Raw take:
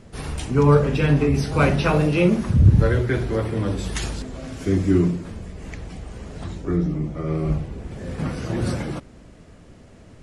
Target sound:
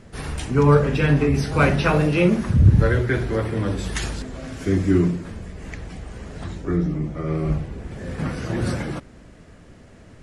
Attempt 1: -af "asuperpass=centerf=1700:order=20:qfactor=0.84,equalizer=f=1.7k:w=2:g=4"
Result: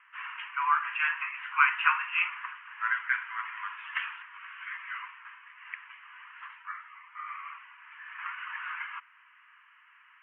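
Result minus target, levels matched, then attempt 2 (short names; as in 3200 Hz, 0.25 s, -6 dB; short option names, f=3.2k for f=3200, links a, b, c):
2000 Hz band +10.0 dB
-af "equalizer=f=1.7k:w=2:g=4"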